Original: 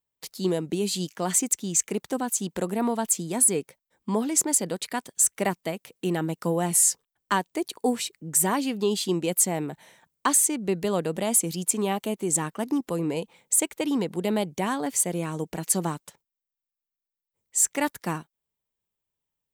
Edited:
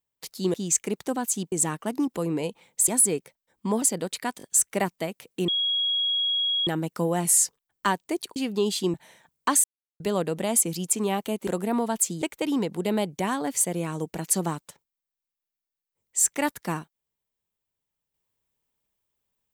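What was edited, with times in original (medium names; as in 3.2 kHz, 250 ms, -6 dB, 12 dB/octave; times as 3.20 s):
0.54–1.58 s: delete
2.56–3.31 s: swap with 12.25–13.61 s
4.25–4.51 s: delete
5.07 s: stutter 0.02 s, 3 plays
6.13 s: add tone 3.31 kHz -22 dBFS 1.19 s
7.82–8.61 s: delete
9.19–9.72 s: delete
10.42–10.78 s: mute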